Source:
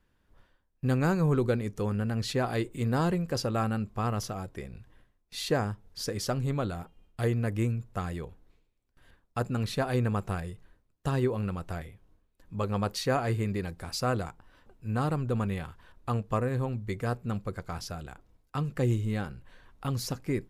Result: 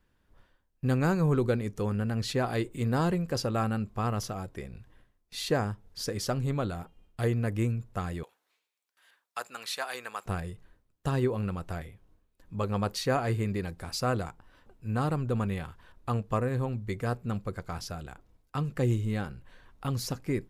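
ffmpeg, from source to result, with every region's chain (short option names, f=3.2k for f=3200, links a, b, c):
-filter_complex "[0:a]asettb=1/sr,asplit=3[a][b][c];[a]atrim=end=8.234[d];[b]atrim=start=8.23:end=10.26,asetpts=PTS-STARTPTS,afade=t=in:d=0.004:c=qsin,afade=t=out:st=2.026:d=0.004:c=qsin,highpass=910,highshelf=f=2.4k:g=4.5[e];[c]atrim=start=10.256[f];[d][e]acrossfade=d=0.004:c1=hsin:c2=qsin[g];[g][f]acrossfade=d=0.004:c1=qsin:c2=hsin"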